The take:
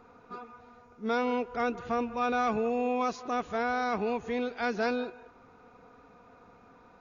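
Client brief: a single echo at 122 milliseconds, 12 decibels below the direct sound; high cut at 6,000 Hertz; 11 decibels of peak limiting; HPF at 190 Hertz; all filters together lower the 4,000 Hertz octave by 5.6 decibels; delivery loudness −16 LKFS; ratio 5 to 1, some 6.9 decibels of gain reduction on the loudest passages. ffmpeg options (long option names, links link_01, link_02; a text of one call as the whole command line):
ffmpeg -i in.wav -af "highpass=190,lowpass=6000,equalizer=frequency=4000:width_type=o:gain=-6,acompressor=threshold=-33dB:ratio=5,alimiter=level_in=10dB:limit=-24dB:level=0:latency=1,volume=-10dB,aecho=1:1:122:0.251,volume=27dB" out.wav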